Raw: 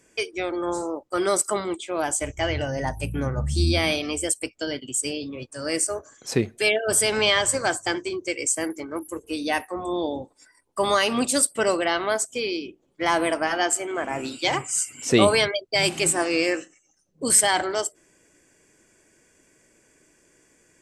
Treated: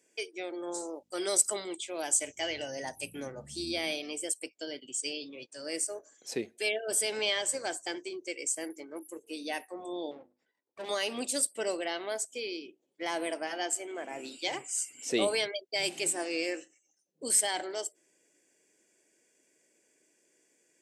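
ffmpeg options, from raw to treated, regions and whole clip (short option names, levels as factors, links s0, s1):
-filter_complex "[0:a]asettb=1/sr,asplit=3[s0][s1][s2];[s0]atrim=end=0.744[s3];[s1]atrim=start=0.74:end=3.32,asetpts=PTS-STARTPTS,afade=t=in:d=0.004:c=qsin,afade=t=out:st=2.576:d=0.004:c=qsin,equalizer=f=6700:t=o:w=2.9:g=8,aeval=exprs='val(0)+0.00224*(sin(2*PI*50*n/s)+sin(2*PI*2*50*n/s)/2+sin(2*PI*3*50*n/s)/3+sin(2*PI*4*50*n/s)/4+sin(2*PI*5*50*n/s)/5)':c=same[s4];[s2]atrim=start=3.316[s5];[s3][s4]acrossfade=d=0.004:c1=hsin:c2=qsin[s6];[s6][s5]acrossfade=d=0.004:c1=qsin:c2=hsin,asettb=1/sr,asplit=3[s7][s8][s9];[s7]atrim=end=4.924[s10];[s8]atrim=start=4.92:end=5.62,asetpts=PTS-STARTPTS,afade=t=in:d=0.004:c=qsin,afade=t=out:st=0.696:d=0.004:c=qsin,lowpass=6400,equalizer=f=4800:t=o:w=2.7:g=6.5[s11];[s9]atrim=start=5.616[s12];[s10][s11]acrossfade=d=0.004:c1=hsin:c2=qsin[s13];[s13][s12]acrossfade=d=0.004:c1=qsin:c2=hsin,asettb=1/sr,asplit=3[s14][s15][s16];[s14]atrim=end=10.114[s17];[s15]atrim=start=10.11:end=10.89,asetpts=PTS-STARTPTS,afade=t=in:d=0.004:c=qsin,afade=t=out:st=0.776:d=0.004:c=qsin,bandreject=f=50:t=h:w=6,bandreject=f=100:t=h:w=6,bandreject=f=150:t=h:w=6,bandreject=f=200:t=h:w=6,bandreject=f=250:t=h:w=6,bandreject=f=300:t=h:w=6,bandreject=f=350:t=h:w=6,aeval=exprs='max(val(0),0)':c=same,adynamicsmooth=sensitivity=2:basefreq=2000[s18];[s16]atrim=start=10.886[s19];[s17][s18]acrossfade=d=0.004:c1=hsin:c2=qsin[s20];[s20][s19]acrossfade=d=0.004:c1=qsin:c2=hsin,highpass=320,equalizer=f=1200:t=o:w=0.88:g=-10.5,volume=0.398"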